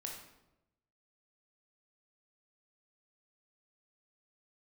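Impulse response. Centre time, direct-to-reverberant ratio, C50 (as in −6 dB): 39 ms, 0.0 dB, 3.5 dB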